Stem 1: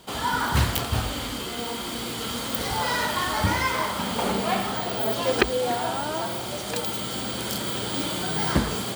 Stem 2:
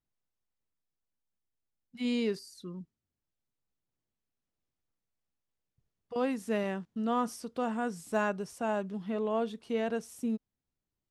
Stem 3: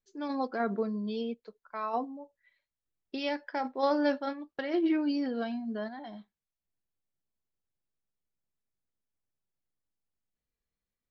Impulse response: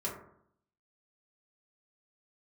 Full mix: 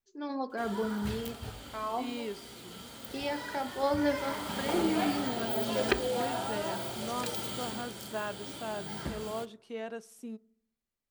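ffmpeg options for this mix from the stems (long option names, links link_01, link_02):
-filter_complex "[0:a]bandreject=frequency=1100:width=8.5,adelay=500,volume=-8.5dB,afade=type=in:start_time=4.04:duration=0.55:silence=0.334965,afade=type=out:start_time=7.61:duration=0.33:silence=0.398107,asplit=2[link_01][link_02];[link_02]volume=-13.5dB[link_03];[1:a]highpass=frequency=320:poles=1,volume=-5.5dB,asplit=2[link_04][link_05];[link_05]volume=-23.5dB[link_06];[2:a]volume=-4dB,asplit=2[link_07][link_08];[link_08]volume=-11dB[link_09];[3:a]atrim=start_sample=2205[link_10];[link_03][link_06][link_09]amix=inputs=3:normalize=0[link_11];[link_11][link_10]afir=irnorm=-1:irlink=0[link_12];[link_01][link_04][link_07][link_12]amix=inputs=4:normalize=0"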